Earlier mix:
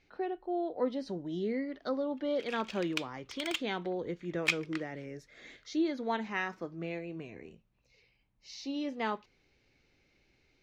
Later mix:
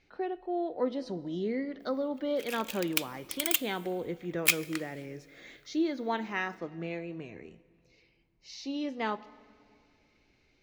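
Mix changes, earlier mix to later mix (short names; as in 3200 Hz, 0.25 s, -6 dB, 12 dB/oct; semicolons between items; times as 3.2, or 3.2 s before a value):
background: remove air absorption 140 m; reverb: on, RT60 2.4 s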